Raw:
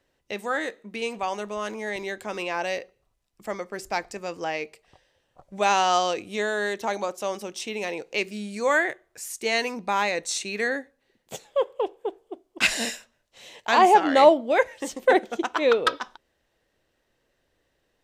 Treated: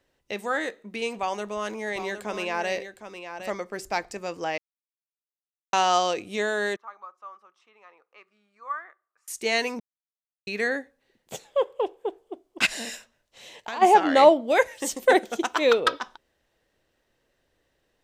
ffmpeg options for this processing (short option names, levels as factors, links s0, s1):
-filter_complex "[0:a]asettb=1/sr,asplit=3[s0][s1][s2];[s0]atrim=end=1.164[s3];[s1]atrim=start=1.16:end=3.5,asetpts=PTS-STARTPTS,afade=t=in:d=0.004:c=qsin,afade=t=out:st=2.336:d=0.004:c=qsin,aecho=1:1:761:0.335,atrim=end_sample=103194[s4];[s2]atrim=start=3.496[s5];[s3][s4]acrossfade=d=0.004:c1=hsin:c2=qsin[s6];[s6][s5]acrossfade=d=0.004:c1=qsin:c2=hsin,asettb=1/sr,asplit=3[s7][s8][s9];[s7]atrim=end=6.764[s10];[s8]atrim=start=6.76:end=9.28,asetpts=PTS-STARTPTS,afade=t=in:d=0.004:c=qsin,afade=t=out:st=2.516:d=0.004:c=qsin,bandpass=f=1200:t=q:w=12[s11];[s9]atrim=start=9.276[s12];[s10][s11]acrossfade=d=0.004:c1=hsin:c2=qsin[s13];[s13][s12]acrossfade=d=0.004:c1=qsin:c2=hsin,asplit=3[s14][s15][s16];[s14]afade=t=out:st=12.65:d=0.02[s17];[s15]acompressor=threshold=0.0316:ratio=6:attack=3.2:release=140:knee=1:detection=peak,afade=t=in:st=12.65:d=0.02,afade=t=out:st=13.81:d=0.02[s18];[s16]afade=t=in:st=13.81:d=0.02[s19];[s17][s18][s19]amix=inputs=3:normalize=0,asettb=1/sr,asplit=3[s20][s21][s22];[s20]atrim=end=14.484[s23];[s21]atrim=start=14.48:end=15.8,asetpts=PTS-STARTPTS,afade=t=in:d=0.004:c=qsin,afade=t=out:st=1.316:d=0.004:c=qsin,highshelf=f=5400:g=11.5[s24];[s22]atrim=start=15.796[s25];[s23][s24]acrossfade=d=0.004:c1=hsin:c2=qsin[s26];[s26][s25]acrossfade=d=0.004:c1=qsin:c2=hsin,asplit=5[s27][s28][s29][s30][s31];[s27]atrim=end=4.58,asetpts=PTS-STARTPTS,afade=t=out:st=4.576:d=0.004:c=hsin[s32];[s28]atrim=start=4.58:end=5.73,asetpts=PTS-STARTPTS,volume=0[s33];[s29]atrim=start=5.73:end=9.8,asetpts=PTS-STARTPTS,afade=t=in:d=0.004:c=hsin,afade=t=out:st=4.066:d=0.004:c=hsin[s34];[s30]atrim=start=9.8:end=10.47,asetpts=PTS-STARTPTS,volume=0[s35];[s31]atrim=start=10.47,asetpts=PTS-STARTPTS,afade=t=in:d=0.004:c=hsin[s36];[s32][s33][s34][s35][s36]concat=n=5:v=0:a=1"